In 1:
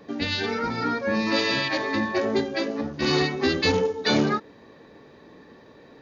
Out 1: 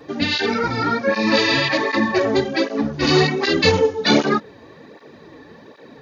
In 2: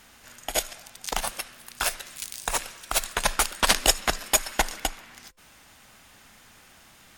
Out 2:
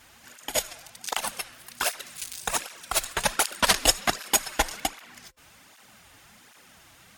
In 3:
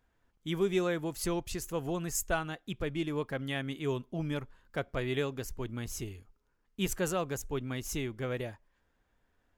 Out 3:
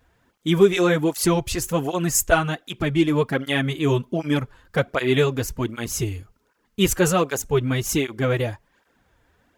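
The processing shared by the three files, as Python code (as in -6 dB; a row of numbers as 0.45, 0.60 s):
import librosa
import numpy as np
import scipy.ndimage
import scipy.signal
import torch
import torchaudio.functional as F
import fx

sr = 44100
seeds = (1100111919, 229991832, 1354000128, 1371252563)

y = fx.flanger_cancel(x, sr, hz=1.3, depth_ms=5.5)
y = librosa.util.normalize(y) * 10.0 ** (-3 / 20.0)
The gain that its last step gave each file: +9.0, +2.5, +16.0 dB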